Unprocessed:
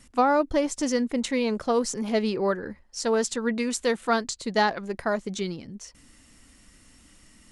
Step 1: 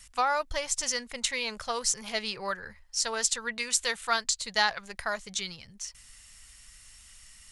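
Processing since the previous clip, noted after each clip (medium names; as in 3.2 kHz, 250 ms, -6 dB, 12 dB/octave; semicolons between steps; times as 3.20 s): amplifier tone stack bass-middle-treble 10-0-10; trim +6 dB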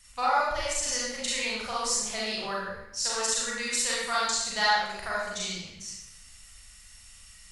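reverberation RT60 0.90 s, pre-delay 33 ms, DRR -7 dB; trim -6 dB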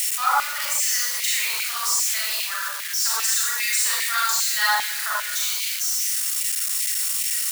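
zero-crossing glitches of -18.5 dBFS; LFO high-pass saw down 2.5 Hz 950–2300 Hz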